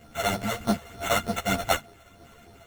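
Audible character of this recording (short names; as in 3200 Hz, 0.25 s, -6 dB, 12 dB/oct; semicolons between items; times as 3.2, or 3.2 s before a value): a buzz of ramps at a fixed pitch in blocks of 64 samples; phasing stages 12, 3.3 Hz, lowest notch 240–2900 Hz; aliases and images of a low sample rate 4900 Hz, jitter 0%; a shimmering, thickened sound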